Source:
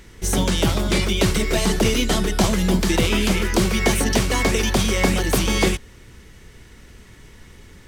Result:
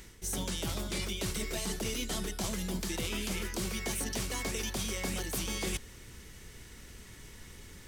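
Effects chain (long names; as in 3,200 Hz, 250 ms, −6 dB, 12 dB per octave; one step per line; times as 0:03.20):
high-shelf EQ 4,500 Hz +9.5 dB
reversed playback
downward compressor 5 to 1, threshold −27 dBFS, peak gain reduction 14 dB
reversed playback
level −6 dB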